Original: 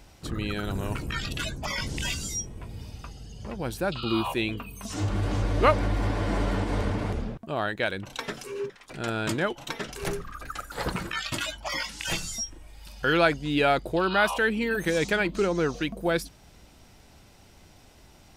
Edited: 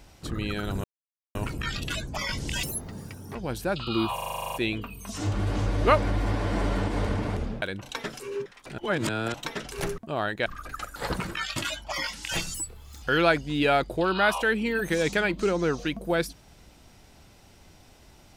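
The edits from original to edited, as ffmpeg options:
-filter_complex "[0:a]asplit=21[a][b][c][d][e][f][g][h][i][j][k][l][m][n][o][p][q][r][s][t][u];[a]atrim=end=0.84,asetpts=PTS-STARTPTS,afade=t=out:st=0.836:d=0.004:c=hsin,apad=pad_dur=0.51[v];[b]atrim=start=0.84:end=2.124,asetpts=PTS-STARTPTS,afade=t=in:d=0.004:c=hsin[w];[c]atrim=start=2.12:end=3.51,asetpts=PTS-STARTPTS,asetrate=85113,aresample=44100,atrim=end_sample=31761,asetpts=PTS-STARTPTS[x];[d]atrim=start=3.506:end=4.342[y];[e]atrim=start=4.298:end=4.342[z];[f]atrim=start=4.298:end=4.342[aa];[g]atrim=start=4.298:end=4.342[ab];[h]atrim=start=4.298:end=4.342[ac];[i]atrim=start=4.298:end=4.342[ad];[j]atrim=start=4.298:end=4.342[ae];[k]atrim=start=4.298:end=4.342[af];[l]atrim=start=4.298:end=4.342[ag];[m]atrim=start=4.298:end=4.342[ah];[n]atrim=start=4.298:end=7.382[ai];[o]atrim=start=7.858:end=9.022[aj];[p]atrim=start=9.018:end=9.582,asetpts=PTS-STARTPTS,areverse[ak];[q]atrim=start=9.578:end=10.222[al];[r]atrim=start=7.378:end=7.862[am];[s]atrim=start=10.218:end=12.304[an];[t]atrim=start=12.3:end=12.98,asetpts=PTS-STARTPTS,asetrate=62181,aresample=44100,atrim=end_sample=21268,asetpts=PTS-STARTPTS[ao];[u]atrim=start=12.976[ap];[v][w]concat=n=2:v=0:a=1[aq];[aq][x]acrossfade=d=0.004:c1=hsin:c2=hsin[ar];[ar][y]acrossfade=d=0.004:c1=hsin:c2=hsin[as];[as][z]acrossfade=d=0.004:c1=hsin:c2=hsin[at];[at][aa]acrossfade=d=0.004:c1=hsin:c2=hsin[au];[au][ab]acrossfade=d=0.004:c1=hsin:c2=hsin[av];[av][ac]acrossfade=d=0.004:c1=hsin:c2=hsin[aw];[aw][ad]acrossfade=d=0.004:c1=hsin:c2=hsin[ax];[ax][ae]acrossfade=d=0.004:c1=hsin:c2=hsin[ay];[ay][af]acrossfade=d=0.004:c1=hsin:c2=hsin[az];[az][ag]acrossfade=d=0.004:c1=hsin:c2=hsin[ba];[ba][ah]acrossfade=d=0.004:c1=hsin:c2=hsin[bb];[bb][ai]acrossfade=d=0.004:c1=hsin:c2=hsin[bc];[bc][aj]acrossfade=d=0.004:c1=hsin:c2=hsin[bd];[bd][ak]acrossfade=d=0.004:c1=hsin:c2=hsin[be];[be][al]acrossfade=d=0.004:c1=hsin:c2=hsin[bf];[bf][am]acrossfade=d=0.004:c1=hsin:c2=hsin[bg];[bg][an]acrossfade=d=0.004:c1=hsin:c2=hsin[bh];[bh][ao]acrossfade=d=0.004:c1=hsin:c2=hsin[bi];[bi][ap]acrossfade=d=0.004:c1=hsin:c2=hsin"

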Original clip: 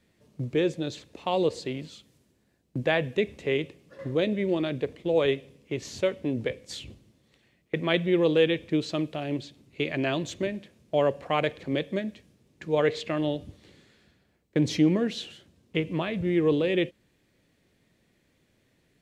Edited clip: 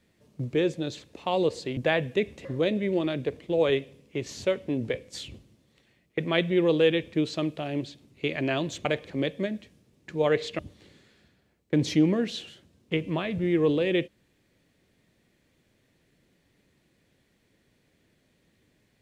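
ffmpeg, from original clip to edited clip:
-filter_complex "[0:a]asplit=5[a][b][c][d][e];[a]atrim=end=1.772[f];[b]atrim=start=2.778:end=3.462[g];[c]atrim=start=4.008:end=10.412[h];[d]atrim=start=11.378:end=13.122[i];[e]atrim=start=13.418[j];[f][g]acrossfade=d=0.004:c1=hsin:c2=hsin[k];[k][h]acrossfade=d=0.004:c1=hsin:c2=hsin[l];[l][i]acrossfade=d=0.004:c1=hsin:c2=hsin[m];[m][j]acrossfade=d=0.004:c1=hsin:c2=hsin"

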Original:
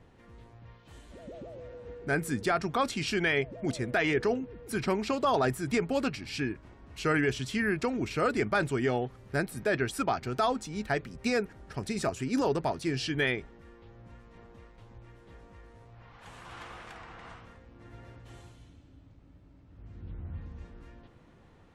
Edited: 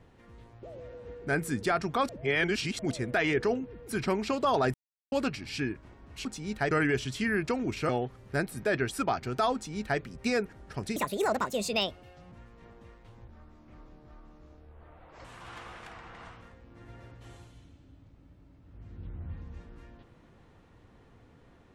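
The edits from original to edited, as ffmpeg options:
-filter_complex "[0:a]asplit=13[a][b][c][d][e][f][g][h][i][j][k][l][m];[a]atrim=end=0.632[n];[b]atrim=start=1.428:end=2.892[o];[c]atrim=start=2.888:end=3.592,asetpts=PTS-STARTPTS,areverse[p];[d]atrim=start=3.588:end=5.54,asetpts=PTS-STARTPTS,afade=t=out:st=1.948:d=0.004:c=hsin[q];[e]atrim=start=5.54:end=5.92,asetpts=PTS-STARTPTS,volume=0[r];[f]atrim=start=5.92:end=7.052,asetpts=PTS-STARTPTS,afade=t=in:d=0.004:c=hsin[s];[g]atrim=start=10.538:end=11.002[t];[h]atrim=start=7.048:end=8.232[u];[i]atrim=start=8.888:end=11.964[v];[j]atrim=start=11.96:end=14.05,asetpts=PTS-STARTPTS,asetrate=67914,aresample=44100[w];[k]atrim=start=14.046:end=15.014[x];[l]atrim=start=15.01:end=16.29,asetpts=PTS-STARTPTS,asetrate=28665,aresample=44100,atrim=end_sample=86843,asetpts=PTS-STARTPTS[y];[m]atrim=start=16.286[z];[n][o]acrossfade=d=0.004:c1=hsin:c2=hsin[aa];[aa][p]acrossfade=d=0.004:c1=hsin:c2=hsin[ab];[q][r][s]concat=n=3:v=0:a=1[ac];[ab][ac]acrossfade=d=0.004:c1=hsin:c2=hsin[ad];[ad][t]acrossfade=d=0.004:c1=hsin:c2=hsin[ae];[ae][u]acrossfade=d=0.004:c1=hsin:c2=hsin[af];[af][v]acrossfade=d=0.004:c1=hsin:c2=hsin[ag];[ag][w]acrossfade=d=0.004:c1=hsin:c2=hsin[ah];[ah][x]acrossfade=d=0.004:c1=hsin:c2=hsin[ai];[ai][y]acrossfade=d=0.004:c1=hsin:c2=hsin[aj];[aj][z]acrossfade=d=0.004:c1=hsin:c2=hsin"

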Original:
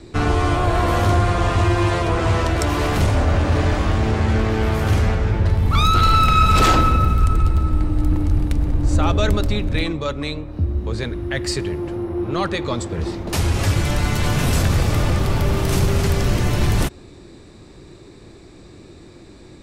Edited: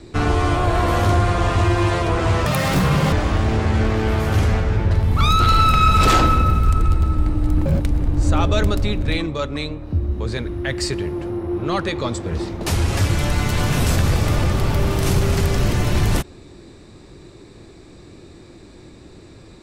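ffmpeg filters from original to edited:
-filter_complex "[0:a]asplit=5[a][b][c][d][e];[a]atrim=end=2.464[f];[b]atrim=start=2.46:end=3.67,asetpts=PTS-STARTPTS,asetrate=80262,aresample=44100,atrim=end_sample=29319,asetpts=PTS-STARTPTS[g];[c]atrim=start=3.666:end=8.204[h];[d]atrim=start=8.2:end=8.46,asetpts=PTS-STARTPTS,asetrate=80703,aresample=44100[i];[e]atrim=start=8.456[j];[f][g]acrossfade=d=0.004:c1=hsin:c2=hsin[k];[k][h]acrossfade=d=0.004:c1=hsin:c2=hsin[l];[l][i]acrossfade=d=0.004:c1=hsin:c2=hsin[m];[m][j]acrossfade=d=0.004:c1=hsin:c2=hsin"

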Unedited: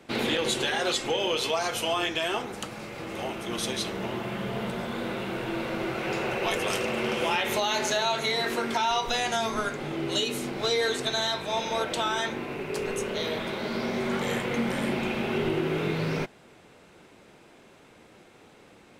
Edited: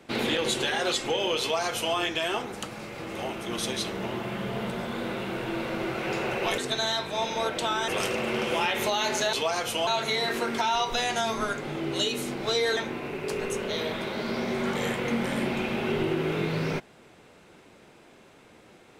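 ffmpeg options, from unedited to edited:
-filter_complex "[0:a]asplit=6[a][b][c][d][e][f];[a]atrim=end=6.582[g];[b]atrim=start=10.928:end=12.232[h];[c]atrim=start=6.578:end=8.032[i];[d]atrim=start=1.408:end=1.952[j];[e]atrim=start=8.028:end=10.932[k];[f]atrim=start=12.228[l];[g][h]acrossfade=d=0.004:c1=hsin:c2=hsin[m];[m][i]acrossfade=d=0.004:c1=hsin:c2=hsin[n];[n][j]acrossfade=d=0.004:c1=hsin:c2=hsin[o];[o][k]acrossfade=d=0.004:c1=hsin:c2=hsin[p];[p][l]acrossfade=d=0.004:c1=hsin:c2=hsin"

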